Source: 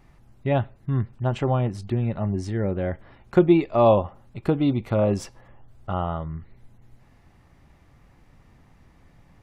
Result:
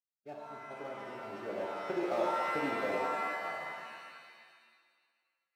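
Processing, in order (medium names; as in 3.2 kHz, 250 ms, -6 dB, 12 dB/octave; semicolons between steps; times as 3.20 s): dead-time distortion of 0.14 ms; Doppler pass-by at 3.80 s, 16 m/s, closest 6.5 m; low-pass 1.7 kHz 6 dB/octave; expander -51 dBFS; high-pass 450 Hz 12 dB/octave; compression 6:1, threshold -33 dBFS, peak gain reduction 16.5 dB; comb of notches 1 kHz; time stretch by phase-locked vocoder 0.59×; pitch-shifted reverb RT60 1.7 s, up +7 st, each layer -2 dB, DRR -1.5 dB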